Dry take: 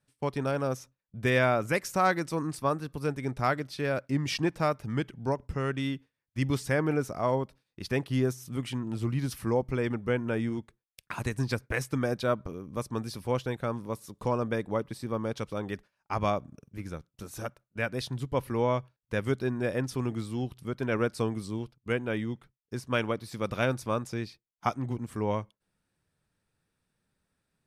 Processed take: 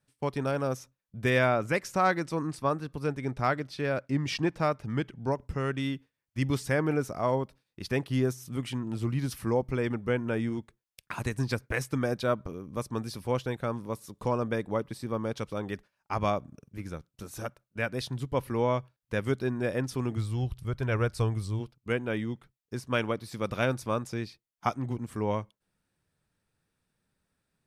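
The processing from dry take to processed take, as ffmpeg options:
-filter_complex "[0:a]asettb=1/sr,asplit=3[a][b][c];[a]atrim=end=1.474[d];[b]atrim=start=1.47:end=5.33,asetpts=PTS-STARTPTS,afade=t=in:d=0.004:c=qsin,afade=t=out:st=3.856:d=0.004:c=qsin,highshelf=f=10k:g=-11.5[e];[c]atrim=start=5.326[f];[d][e]acrossfade=d=0.004:c1=hsin:c2=qsin[g];[g][f]acrossfade=d=0.004:c1=qsin:c2=hsin,asplit=3[h][i][j];[h]afade=t=out:st=20.16:d=0.02[k];[i]asubboost=boost=11:cutoff=69,afade=t=in:st=20.16:d=0.02,afade=t=out:st=21.59:d=0.02[l];[j]afade=t=in:st=21.59:d=0.02[m];[k][l][m]amix=inputs=3:normalize=0"

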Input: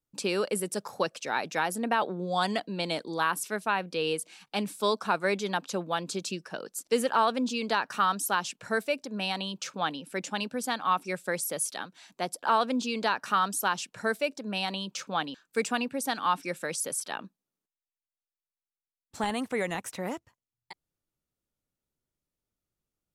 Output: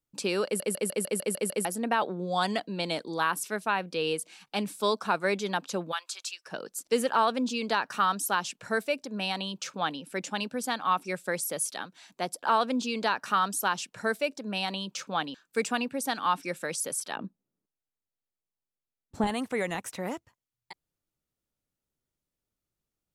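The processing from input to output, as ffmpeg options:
-filter_complex "[0:a]asplit=3[a][b][c];[a]afade=t=out:st=5.91:d=0.02[d];[b]highpass=f=1k:w=0.5412,highpass=f=1k:w=1.3066,afade=t=in:st=5.91:d=0.02,afade=t=out:st=6.45:d=0.02[e];[c]afade=t=in:st=6.45:d=0.02[f];[d][e][f]amix=inputs=3:normalize=0,asettb=1/sr,asplit=3[g][h][i];[g]atrim=end=17.164[j];[h]atrim=start=17.16:end=19.27,asetpts=PTS-STARTPTS,afade=t=in:d=0.004:c=qsin,afade=t=out:st=2.106:d=0.004:c=qsin,tiltshelf=f=870:g=8.5[k];[i]atrim=start=19.266[l];[j][k]acrossfade=d=0.004:c1=hsin:c2=qsin[m];[m][l]acrossfade=d=0.004:c1=qsin:c2=hsin,asplit=9[n][o][p][q][r][s][t][u][v];[n]atrim=end=0.602[w];[o]atrim=start=0.448:end=0.602[x];[p]atrim=start=0.448:end=0.602[y];[q]atrim=start=0.448:end=0.602[z];[r]atrim=start=0.448:end=0.602[aa];[s]atrim=start=0.448:end=0.602[ab];[t]atrim=start=0.448:end=0.602[ac];[u]atrim=start=0.448:end=0.602[ad];[v]atrim=start=1.648[ae];[w][x]acrossfade=d=0.004:c1=hsin:c2=hsin[af];[af][y]acrossfade=d=0.004:c1=hsin:c2=hsin[ag];[ag][z]acrossfade=d=0.004:c1=hsin:c2=hsin[ah];[ah][aa]acrossfade=d=0.004:c1=hsin:c2=hsin[ai];[ai][ab]acrossfade=d=0.004:c1=hsin:c2=hsin[aj];[aj][ac]acrossfade=d=0.004:c1=hsin:c2=hsin[ak];[ak][ad]acrossfade=d=0.004:c1=hsin:c2=hsin[al];[al][ae]acrossfade=d=0.004:c1=hsin:c2=hsin"

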